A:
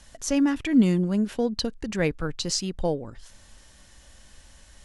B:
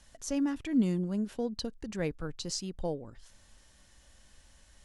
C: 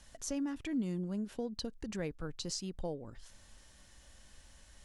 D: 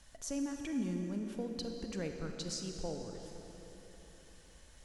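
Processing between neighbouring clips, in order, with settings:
dynamic equaliser 2,200 Hz, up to −4 dB, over −46 dBFS, Q 0.86; level −8 dB
downward compressor 2 to 1, threshold −40 dBFS, peak gain reduction 10 dB; level +1 dB
convolution reverb RT60 4.1 s, pre-delay 28 ms, DRR 3.5 dB; level −2 dB

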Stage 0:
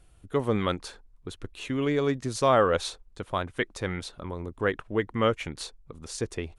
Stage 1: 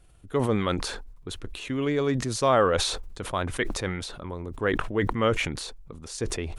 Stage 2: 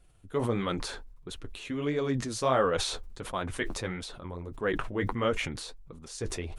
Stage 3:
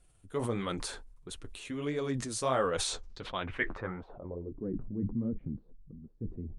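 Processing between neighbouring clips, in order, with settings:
level that may fall only so fast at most 46 dB per second
flanger 1.5 Hz, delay 3.8 ms, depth 9.1 ms, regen −30%; level −1 dB
low-pass filter sweep 9,400 Hz → 220 Hz, 0:02.83–0:04.76; level −4 dB

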